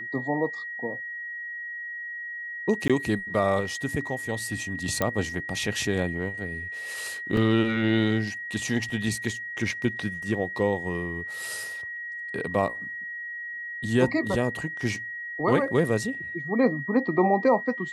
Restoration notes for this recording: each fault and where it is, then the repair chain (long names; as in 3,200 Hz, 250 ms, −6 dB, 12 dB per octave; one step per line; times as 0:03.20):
whistle 1,900 Hz −33 dBFS
0:02.88–0:02.90: drop-out 16 ms
0:05.02: click −10 dBFS
0:07.37: drop-out 2.6 ms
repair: click removal
notch filter 1,900 Hz, Q 30
repair the gap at 0:02.88, 16 ms
repair the gap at 0:07.37, 2.6 ms